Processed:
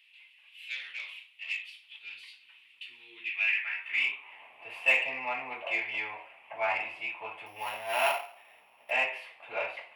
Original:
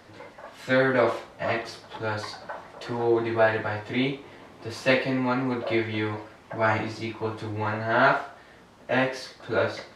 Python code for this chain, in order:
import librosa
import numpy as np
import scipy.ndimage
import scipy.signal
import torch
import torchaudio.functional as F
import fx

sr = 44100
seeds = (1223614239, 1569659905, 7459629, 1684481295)

p1 = fx.sample_sort(x, sr, block=8, at=(7.46, 8.91))
p2 = fx.curve_eq(p1, sr, hz=(100.0, 320.0, 570.0, 980.0, 1500.0, 2600.0, 4000.0, 6300.0, 10000.0), db=(0, -16, -17, -12, -18, 7, -23, -29, -13))
p3 = 10.0 ** (-30.0 / 20.0) * np.tanh(p2 / 10.0 ** (-30.0 / 20.0))
p4 = p2 + F.gain(torch.from_numpy(p3), -8.5).numpy()
p5 = fx.filter_sweep_highpass(p4, sr, from_hz=3700.0, to_hz=700.0, start_s=3.08, end_s=4.51, q=2.5)
y = fx.low_shelf_res(p5, sr, hz=460.0, db=11.5, q=3.0, at=(2.04, 3.3))